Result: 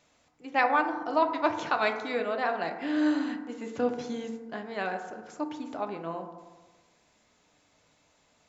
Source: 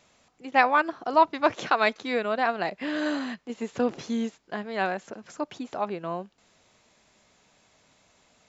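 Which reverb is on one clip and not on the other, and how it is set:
feedback delay network reverb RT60 1.3 s, low-frequency decay 1×, high-frequency decay 0.3×, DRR 4.5 dB
level −5 dB

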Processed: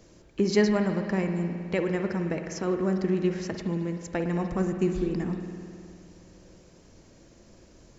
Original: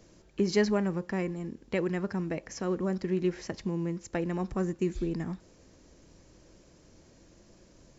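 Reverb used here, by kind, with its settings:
spring reverb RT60 2.4 s, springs 52 ms, chirp 25 ms, DRR 5.5 dB
level +2.5 dB

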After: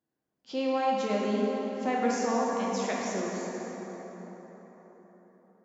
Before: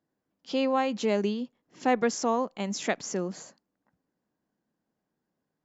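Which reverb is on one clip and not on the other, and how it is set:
dense smooth reverb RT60 4.7 s, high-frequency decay 0.5×, DRR −4.5 dB
level −7 dB

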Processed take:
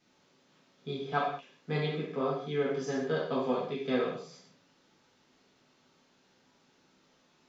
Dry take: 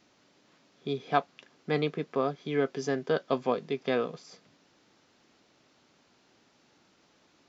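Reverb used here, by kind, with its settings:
reverb whose tail is shaped and stops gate 230 ms falling, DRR −6.5 dB
level −9.5 dB

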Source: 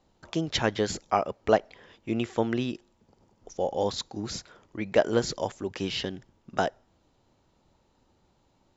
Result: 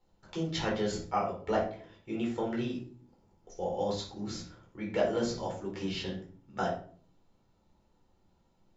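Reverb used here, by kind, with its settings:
rectangular room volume 390 cubic metres, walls furnished, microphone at 4.3 metres
level −12.5 dB

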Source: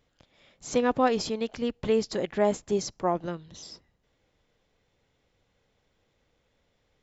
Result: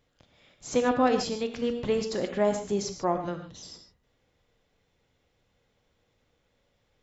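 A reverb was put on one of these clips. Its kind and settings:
reverb whose tail is shaped and stops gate 170 ms flat, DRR 6 dB
level −1 dB

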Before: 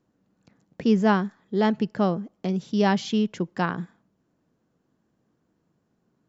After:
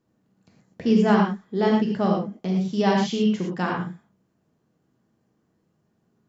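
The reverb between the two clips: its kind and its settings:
reverb whose tail is shaped and stops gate 140 ms flat, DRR −1.5 dB
level −2.5 dB

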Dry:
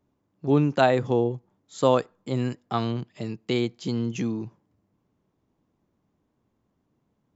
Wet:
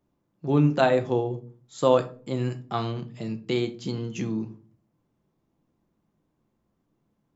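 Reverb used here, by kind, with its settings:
rectangular room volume 250 cubic metres, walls furnished, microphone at 0.8 metres
level −2 dB

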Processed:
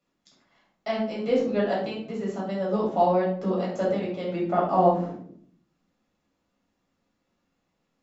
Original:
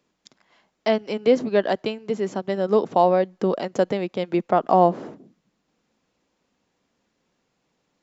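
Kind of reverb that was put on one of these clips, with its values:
rectangular room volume 710 cubic metres, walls furnished, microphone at 6.8 metres
level −13.5 dB

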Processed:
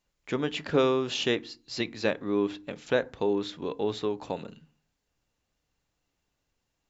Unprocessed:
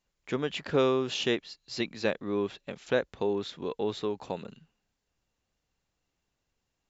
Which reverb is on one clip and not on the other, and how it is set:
feedback delay network reverb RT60 0.38 s, low-frequency decay 1.6×, high-frequency decay 0.55×, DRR 15 dB
level +1.5 dB

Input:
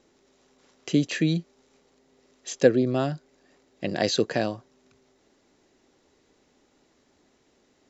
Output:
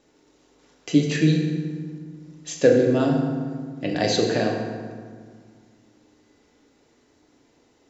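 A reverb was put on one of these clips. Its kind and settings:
feedback delay network reverb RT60 1.8 s, low-frequency decay 1.4×, high-frequency decay 0.6×, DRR −0.5 dB

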